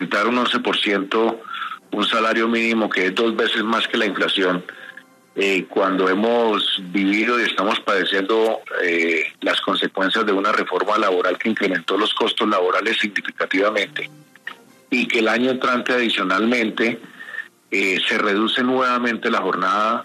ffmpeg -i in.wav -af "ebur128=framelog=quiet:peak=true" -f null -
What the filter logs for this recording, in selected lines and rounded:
Integrated loudness:
  I:         -19.0 LUFS
  Threshold: -29.3 LUFS
Loudness range:
  LRA:         1.7 LU
  Threshold: -39.4 LUFS
  LRA low:   -20.2 LUFS
  LRA high:  -18.5 LUFS
True peak:
  Peak:       -6.3 dBFS